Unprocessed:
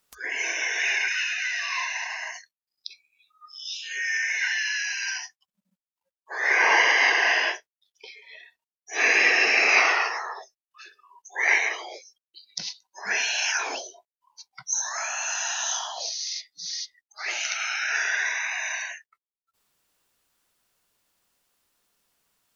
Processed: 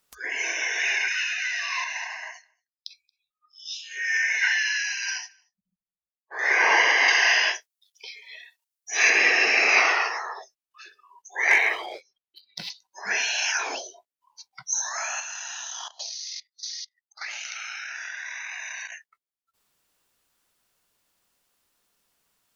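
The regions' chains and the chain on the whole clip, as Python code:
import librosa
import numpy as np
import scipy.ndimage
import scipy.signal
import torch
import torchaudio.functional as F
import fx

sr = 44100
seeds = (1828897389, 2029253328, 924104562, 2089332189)

y = fx.chain(x, sr, fx.echo_single(ms=228, db=-21.5),
    fx.band_widen(depth_pct=100), at=(1.84, 6.39))
y = fx.chain(y, sr, fx.highpass(hz=660.0, slope=6),
    fx.high_shelf(hz=3600.0, db=10.0), at=(7.08, 9.1))
y = fx.chain(y, sr, fx.lowpass(hz=4000.0, slope=24),
    fx.notch(hz=2900.0, q=29.0),
    fx.leveller(passes=1), at=(11.5, 12.7))
y = fx.chain(y, sr, fx.highpass(hz=880.0, slope=12),
    fx.level_steps(step_db=12),
    fx.transient(attack_db=4, sustain_db=-10), at=(15.2, 18.92))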